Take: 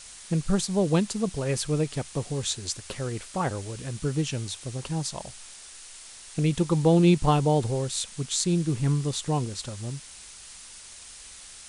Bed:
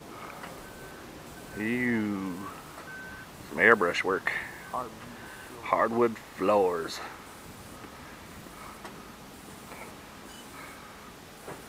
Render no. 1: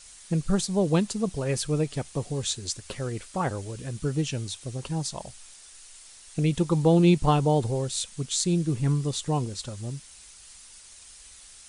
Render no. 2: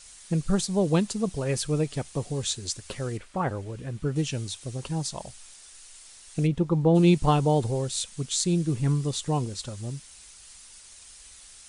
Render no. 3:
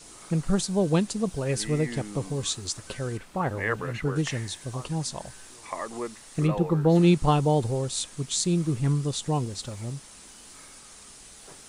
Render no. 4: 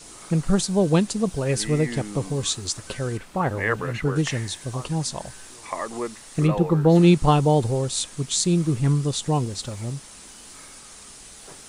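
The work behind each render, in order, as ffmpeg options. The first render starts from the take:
ffmpeg -i in.wav -af "afftdn=noise_reduction=6:noise_floor=-46" out.wav
ffmpeg -i in.wav -filter_complex "[0:a]asettb=1/sr,asplit=3[link_01][link_02][link_03];[link_01]atrim=end=3.174[link_04];[link_02]atrim=start=3.17:end=4.16,asetpts=PTS-STARTPTS,afade=type=in:duration=0.004:curve=qsin,afade=type=out:start_time=0.986:duration=0.004:curve=qsin,acrossover=split=3100[link_05][link_06];[link_06]acompressor=threshold=-58dB:ratio=4:attack=1:release=60[link_07];[link_05][link_07]amix=inputs=2:normalize=0[link_08];[link_03]atrim=start=4.156[link_09];[link_04][link_08]acrossfade=duration=0.004:curve1=hsin:curve2=qsin[link_10];[link_10][link_09]acrossfade=duration=0.004:curve1=qsin:curve2=hsin,asplit=3[link_11][link_12][link_13];[link_11]afade=type=out:start_time=6.46:duration=0.02[link_14];[link_12]lowpass=frequency=1100:poles=1,afade=type=in:start_time=6.46:duration=0.02,afade=type=out:start_time=6.94:duration=0.02[link_15];[link_13]afade=type=in:start_time=6.94:duration=0.02[link_16];[link_14][link_15][link_16]amix=inputs=3:normalize=0" out.wav
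ffmpeg -i in.wav -i bed.wav -filter_complex "[1:a]volume=-9dB[link_01];[0:a][link_01]amix=inputs=2:normalize=0" out.wav
ffmpeg -i in.wav -af "volume=4dB" out.wav

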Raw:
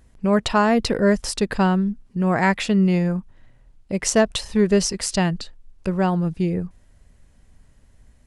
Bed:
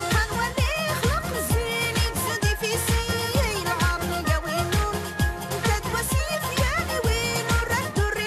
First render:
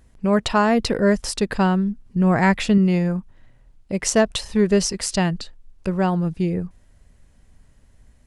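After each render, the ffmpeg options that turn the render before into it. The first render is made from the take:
ffmpeg -i in.wav -filter_complex "[0:a]asettb=1/sr,asplit=3[link_01][link_02][link_03];[link_01]atrim=end=2.064[link_04];[link_02]atrim=start=2.06:end=2.78,asetpts=PTS-STARTPTS,afade=type=in:duration=0.004:curve=qsin,afade=type=out:start_time=0.716:duration=0.004:curve=qsin,lowshelf=frequency=150:gain=9[link_05];[link_03]atrim=start=2.776[link_06];[link_04][link_05]acrossfade=duration=0.004:curve1=hsin:curve2=qsin[link_07];[link_07][link_06]acrossfade=duration=0.004:curve1=qsin:curve2=hsin" out.wav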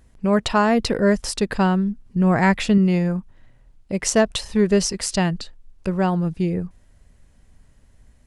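ffmpeg -i in.wav -af anull out.wav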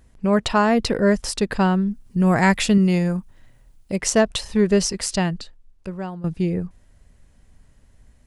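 ffmpeg -i in.wav -filter_complex "[0:a]asettb=1/sr,asplit=3[link_01][link_02][link_03];[link_01]atrim=end=1.914[link_04];[link_02]atrim=start=1.91:end=3.96,asetpts=PTS-STARTPTS,afade=type=in:duration=0.004:curve=qsin,afade=type=out:start_time=2.046:duration=0.004:curve=qsin,aemphasis=mode=production:type=50kf[link_05];[link_03]atrim=start=3.956[link_06];[link_04][link_05]acrossfade=duration=0.004:curve1=hsin:curve2=qsin[link_07];[link_07][link_06]acrossfade=duration=0.004:curve1=qsin:curve2=hsin,asplit=2[link_08][link_09];[link_08]atrim=end=6.24,asetpts=PTS-STARTPTS,afade=type=out:start_time=5.03:duration=1.21:silence=0.177828[link_10];[link_09]atrim=start=6.24,asetpts=PTS-STARTPTS,afade=type=in:duration=0.004:curve=hsin:silence=0.177828[link_11];[link_10][link_11]concat=n=2:v=0:a=1" out.wav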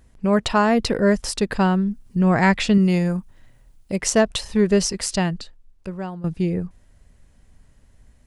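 ffmpeg -i in.wav -filter_complex "[0:a]asettb=1/sr,asplit=3[link_01][link_02][link_03];[link_01]atrim=end=2.194[link_04];[link_02]atrim=start=2.19:end=2.74,asetpts=PTS-STARTPTS,afade=type=in:duration=0.004:curve=qsin,afade=type=out:start_time=0.546:duration=0.004:curve=qsin,lowpass=5500[link_05];[link_03]atrim=start=2.736[link_06];[link_04][link_05]acrossfade=duration=0.004:curve1=hsin:curve2=qsin[link_07];[link_07][link_06]acrossfade=duration=0.004:curve1=qsin:curve2=hsin" out.wav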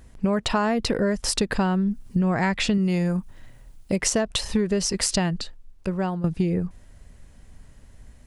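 ffmpeg -i in.wav -filter_complex "[0:a]asplit=2[link_01][link_02];[link_02]alimiter=limit=-13dB:level=0:latency=1:release=28,volume=-2dB[link_03];[link_01][link_03]amix=inputs=2:normalize=0,acompressor=threshold=-19dB:ratio=10" out.wav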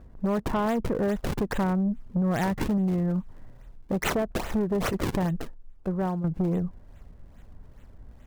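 ffmpeg -i in.wav -filter_complex "[0:a]acrossover=split=1500[link_01][link_02];[link_02]acrusher=samples=40:mix=1:aa=0.000001:lfo=1:lforange=64:lforate=2.4[link_03];[link_01][link_03]amix=inputs=2:normalize=0,asoftclip=type=tanh:threshold=-20dB" out.wav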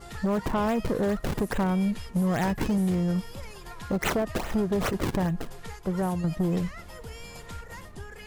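ffmpeg -i in.wav -i bed.wav -filter_complex "[1:a]volume=-19dB[link_01];[0:a][link_01]amix=inputs=2:normalize=0" out.wav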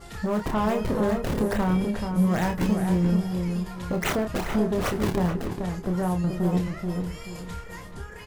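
ffmpeg -i in.wav -filter_complex "[0:a]asplit=2[link_01][link_02];[link_02]adelay=28,volume=-5.5dB[link_03];[link_01][link_03]amix=inputs=2:normalize=0,asplit=2[link_04][link_05];[link_05]adelay=432,lowpass=frequency=1500:poles=1,volume=-5dB,asplit=2[link_06][link_07];[link_07]adelay=432,lowpass=frequency=1500:poles=1,volume=0.32,asplit=2[link_08][link_09];[link_09]adelay=432,lowpass=frequency=1500:poles=1,volume=0.32,asplit=2[link_10][link_11];[link_11]adelay=432,lowpass=frequency=1500:poles=1,volume=0.32[link_12];[link_04][link_06][link_08][link_10][link_12]amix=inputs=5:normalize=0" out.wav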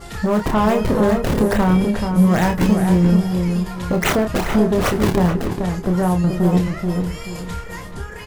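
ffmpeg -i in.wav -af "volume=8dB" out.wav

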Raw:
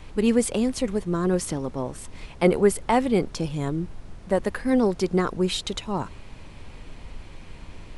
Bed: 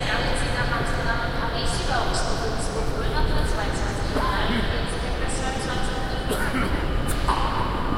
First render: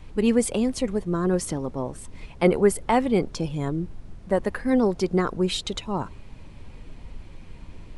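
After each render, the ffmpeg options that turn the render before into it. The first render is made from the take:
ffmpeg -i in.wav -af "afftdn=noise_reduction=6:noise_floor=-44" out.wav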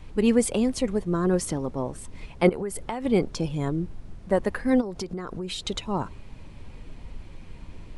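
ffmpeg -i in.wav -filter_complex "[0:a]asettb=1/sr,asplit=3[link_01][link_02][link_03];[link_01]atrim=end=2.494[link_04];[link_02]atrim=start=2.49:end=3.05,asetpts=PTS-STARTPTS,afade=type=in:duration=0.004:curve=qsin,afade=type=out:start_time=0.556:duration=0.004:curve=qsin,acompressor=threshold=-26dB:ratio=12:attack=3.2:release=140:knee=1:detection=peak[link_05];[link_03]atrim=start=3.046[link_06];[link_04][link_05]acrossfade=duration=0.004:curve1=hsin:curve2=qsin[link_07];[link_07][link_06]acrossfade=duration=0.004:curve1=qsin:curve2=hsin,asplit=3[link_08][link_09][link_10];[link_08]afade=type=out:start_time=4.8:duration=0.02[link_11];[link_09]acompressor=threshold=-28dB:ratio=12:attack=3.2:release=140:knee=1:detection=peak,afade=type=in:start_time=4.8:duration=0.02,afade=type=out:start_time=5.64:duration=0.02[link_12];[link_10]afade=type=in:start_time=5.64:duration=0.02[link_13];[link_11][link_12][link_13]amix=inputs=3:normalize=0" out.wav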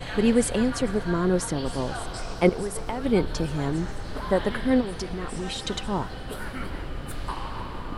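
ffmpeg -i in.wav -i bed.wav -filter_complex "[1:a]volume=-10.5dB[link_01];[0:a][link_01]amix=inputs=2:normalize=0" out.wav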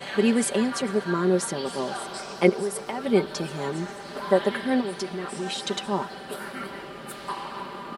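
ffmpeg -i in.wav -af "highpass=240,aecho=1:1:5.1:0.65" out.wav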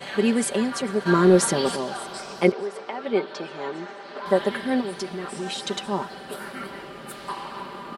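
ffmpeg -i in.wav -filter_complex "[0:a]asplit=3[link_01][link_02][link_03];[link_01]afade=type=out:start_time=1.05:duration=0.02[link_04];[link_02]acontrast=82,afade=type=in:start_time=1.05:duration=0.02,afade=type=out:start_time=1.75:duration=0.02[link_05];[link_03]afade=type=in:start_time=1.75:duration=0.02[link_06];[link_04][link_05][link_06]amix=inputs=3:normalize=0,asettb=1/sr,asplit=3[link_07][link_08][link_09];[link_07]atrim=end=2.524[link_10];[link_08]atrim=start=2.52:end=4.26,asetpts=PTS-STARTPTS,afade=type=in:duration=0.004:curve=qsin,afade=type=out:start_time=1.736:duration=0.004:curve=qsin,highpass=320,lowpass=3800[link_11];[link_09]atrim=start=4.256[link_12];[link_10][link_11]acrossfade=duration=0.004:curve1=hsin:curve2=qsin[link_13];[link_13][link_12]acrossfade=duration=0.004:curve1=qsin:curve2=hsin" out.wav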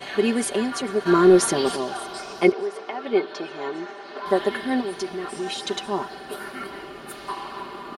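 ffmpeg -i in.wav -af "bandreject=frequency=7800:width=10,aecho=1:1:2.8:0.45" out.wav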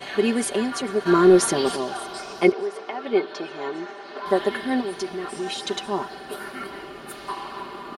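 ffmpeg -i in.wav -af anull out.wav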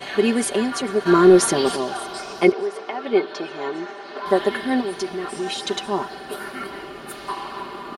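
ffmpeg -i in.wav -af "volume=2.5dB,alimiter=limit=-3dB:level=0:latency=1" out.wav

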